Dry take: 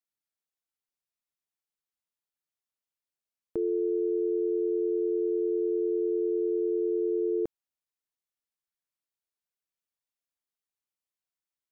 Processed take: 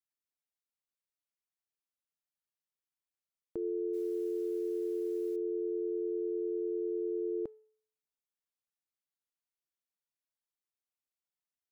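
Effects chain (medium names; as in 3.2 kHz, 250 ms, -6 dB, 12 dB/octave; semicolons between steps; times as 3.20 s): 3.93–5.36 s: modulation noise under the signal 32 dB; de-hum 433.6 Hz, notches 11; trim -6.5 dB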